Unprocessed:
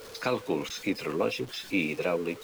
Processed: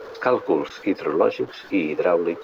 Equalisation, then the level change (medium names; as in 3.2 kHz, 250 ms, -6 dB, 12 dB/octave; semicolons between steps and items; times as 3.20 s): boxcar filter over 5 samples; high-order bell 710 Hz +10 dB 2.9 oct; 0.0 dB